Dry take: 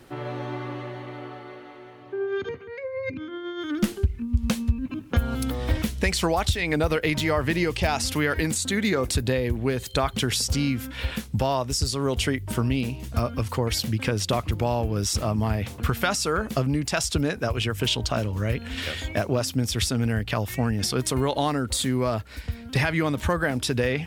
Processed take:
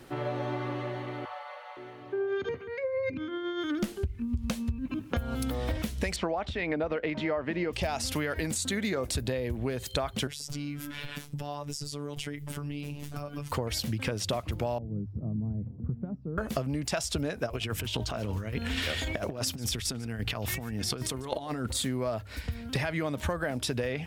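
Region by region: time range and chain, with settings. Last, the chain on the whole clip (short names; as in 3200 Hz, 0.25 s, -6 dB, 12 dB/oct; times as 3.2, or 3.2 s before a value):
1.25–1.77 Chebyshev high-pass 500 Hz, order 8 + bell 970 Hz +5.5 dB 0.61 oct
6.16–7.73 LPF 2500 Hz + resonant low shelf 160 Hz -7 dB, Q 1.5
10.27–13.52 robotiser 145 Hz + compressor 5:1, threshold -32 dBFS + notch 4300 Hz, Q 26
14.78–16.38 ladder band-pass 190 Hz, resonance 30% + tilt -3 dB/oct
17.46–21.77 negative-ratio compressor -29 dBFS, ratio -0.5 + notch 570 Hz, Q 16 + echo 0.146 s -22 dB
whole clip: notches 50/100 Hz; dynamic EQ 620 Hz, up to +6 dB, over -41 dBFS, Q 2.8; compressor 5:1, threshold -28 dBFS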